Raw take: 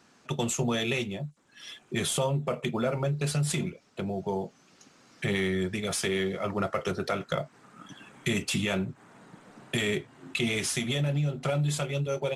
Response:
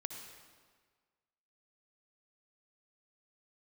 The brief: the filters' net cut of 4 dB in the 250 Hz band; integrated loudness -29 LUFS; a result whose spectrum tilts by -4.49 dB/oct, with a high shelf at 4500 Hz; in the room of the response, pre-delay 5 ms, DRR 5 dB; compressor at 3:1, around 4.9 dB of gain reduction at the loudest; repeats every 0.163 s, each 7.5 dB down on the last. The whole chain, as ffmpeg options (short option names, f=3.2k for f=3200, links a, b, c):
-filter_complex "[0:a]equalizer=f=250:t=o:g=-6.5,highshelf=f=4.5k:g=-6.5,acompressor=threshold=-32dB:ratio=3,aecho=1:1:163|326|489|652|815:0.422|0.177|0.0744|0.0312|0.0131,asplit=2[a][b];[1:a]atrim=start_sample=2205,adelay=5[c];[b][c]afir=irnorm=-1:irlink=0,volume=-3.5dB[d];[a][d]amix=inputs=2:normalize=0,volume=5dB"